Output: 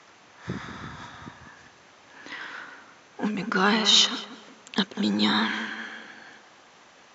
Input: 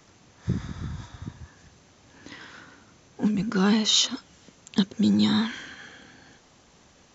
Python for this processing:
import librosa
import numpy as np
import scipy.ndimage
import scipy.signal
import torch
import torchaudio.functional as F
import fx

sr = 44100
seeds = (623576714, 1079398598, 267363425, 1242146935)

p1 = fx.bandpass_q(x, sr, hz=1500.0, q=0.61)
p2 = p1 + fx.echo_tape(p1, sr, ms=190, feedback_pct=49, wet_db=-9.0, lp_hz=1200.0, drive_db=13.0, wow_cents=28, dry=0)
y = p2 * 10.0 ** (8.0 / 20.0)